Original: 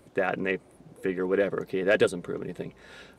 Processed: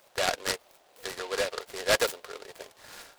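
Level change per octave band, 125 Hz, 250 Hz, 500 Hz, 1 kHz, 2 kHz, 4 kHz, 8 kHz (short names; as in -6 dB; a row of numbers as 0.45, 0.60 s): -11.0, -14.5, -5.5, +1.5, -1.0, +10.0, +14.0 dB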